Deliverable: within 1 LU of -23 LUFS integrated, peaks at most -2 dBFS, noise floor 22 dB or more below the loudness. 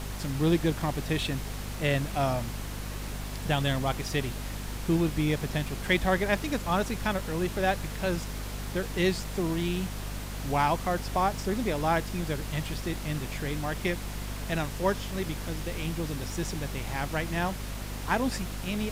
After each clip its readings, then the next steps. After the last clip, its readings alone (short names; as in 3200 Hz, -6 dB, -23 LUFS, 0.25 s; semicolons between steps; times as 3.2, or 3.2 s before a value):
hum 50 Hz; harmonics up to 250 Hz; hum level -34 dBFS; noise floor -37 dBFS; noise floor target -53 dBFS; loudness -30.5 LUFS; peak -12.0 dBFS; loudness target -23.0 LUFS
-> de-hum 50 Hz, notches 5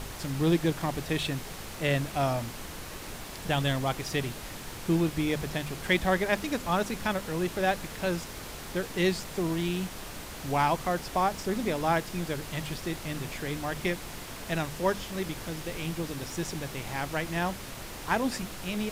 hum none; noise floor -41 dBFS; noise floor target -53 dBFS
-> noise print and reduce 12 dB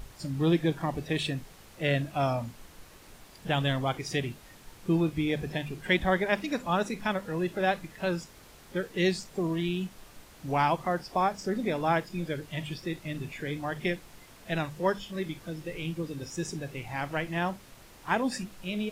noise floor -53 dBFS; loudness -31.0 LUFS; peak -12.0 dBFS; loudness target -23.0 LUFS
-> gain +8 dB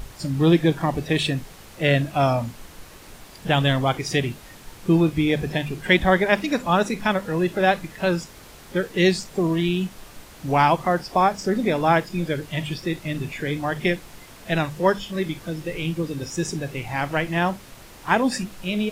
loudness -23.0 LUFS; peak -4.0 dBFS; noise floor -45 dBFS